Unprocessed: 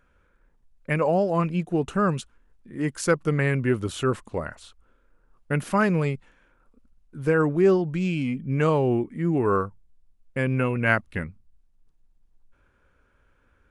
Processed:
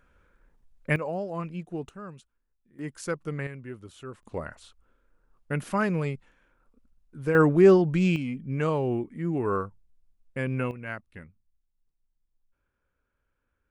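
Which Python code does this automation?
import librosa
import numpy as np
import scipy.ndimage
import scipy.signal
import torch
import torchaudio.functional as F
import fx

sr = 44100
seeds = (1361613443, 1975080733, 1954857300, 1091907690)

y = fx.gain(x, sr, db=fx.steps((0.0, 0.5), (0.96, -10.0), (1.89, -19.0), (2.79, -9.5), (3.47, -17.0), (4.23, -4.5), (7.35, 2.5), (8.16, -5.0), (10.71, -15.0)))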